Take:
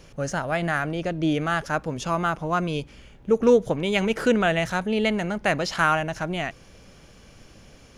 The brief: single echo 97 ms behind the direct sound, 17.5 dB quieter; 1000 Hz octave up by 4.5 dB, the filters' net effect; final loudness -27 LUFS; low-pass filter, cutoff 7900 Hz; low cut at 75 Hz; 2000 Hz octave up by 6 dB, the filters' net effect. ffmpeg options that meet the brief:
-af "highpass=75,lowpass=7.9k,equalizer=f=1k:t=o:g=4,equalizer=f=2k:t=o:g=6.5,aecho=1:1:97:0.133,volume=-6dB"

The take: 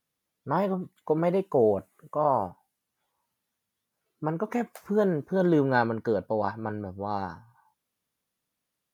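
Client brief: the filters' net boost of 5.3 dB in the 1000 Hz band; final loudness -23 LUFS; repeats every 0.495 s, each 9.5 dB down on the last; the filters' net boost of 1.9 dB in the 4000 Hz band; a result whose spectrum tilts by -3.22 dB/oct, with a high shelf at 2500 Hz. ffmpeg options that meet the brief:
-af "equalizer=f=1k:t=o:g=7,highshelf=f=2.5k:g=-4.5,equalizer=f=4k:t=o:g=5.5,aecho=1:1:495|990|1485|1980:0.335|0.111|0.0365|0.012,volume=2.5dB"

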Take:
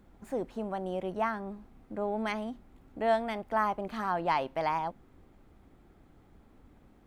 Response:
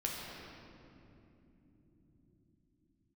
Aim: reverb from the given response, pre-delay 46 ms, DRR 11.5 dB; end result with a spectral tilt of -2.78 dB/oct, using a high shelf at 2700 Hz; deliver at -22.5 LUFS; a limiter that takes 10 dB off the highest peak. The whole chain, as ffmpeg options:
-filter_complex "[0:a]highshelf=f=2.7k:g=-4,alimiter=level_in=2.5dB:limit=-24dB:level=0:latency=1,volume=-2.5dB,asplit=2[a][b];[1:a]atrim=start_sample=2205,adelay=46[c];[b][c]afir=irnorm=-1:irlink=0,volume=-15dB[d];[a][d]amix=inputs=2:normalize=0,volume=14.5dB"

